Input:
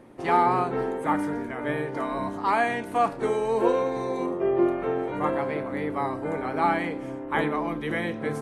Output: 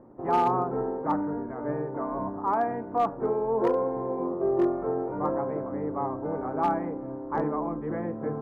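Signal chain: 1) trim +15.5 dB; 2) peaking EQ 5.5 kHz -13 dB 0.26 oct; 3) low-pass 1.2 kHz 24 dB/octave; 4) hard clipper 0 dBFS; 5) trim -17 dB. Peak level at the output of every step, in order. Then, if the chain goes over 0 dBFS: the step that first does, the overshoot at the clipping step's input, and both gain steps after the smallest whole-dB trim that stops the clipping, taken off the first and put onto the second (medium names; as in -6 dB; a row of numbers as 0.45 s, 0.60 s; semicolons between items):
+6.5 dBFS, +6.5 dBFS, +6.0 dBFS, 0.0 dBFS, -17.0 dBFS; step 1, 6.0 dB; step 1 +9.5 dB, step 5 -11 dB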